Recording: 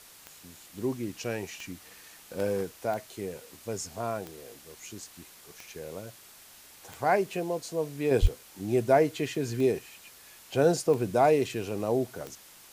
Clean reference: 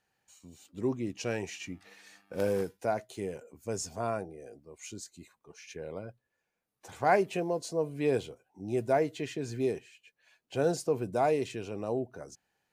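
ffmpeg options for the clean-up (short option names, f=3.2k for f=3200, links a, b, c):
-filter_complex "[0:a]adeclick=t=4,asplit=3[a][b][c];[a]afade=t=out:st=8.21:d=0.02[d];[b]highpass=f=140:w=0.5412,highpass=f=140:w=1.3066,afade=t=in:st=8.21:d=0.02,afade=t=out:st=8.33:d=0.02[e];[c]afade=t=in:st=8.33:d=0.02[f];[d][e][f]amix=inputs=3:normalize=0,afwtdn=0.0028,asetnsamples=n=441:p=0,asendcmd='8.11 volume volume -5dB',volume=0dB"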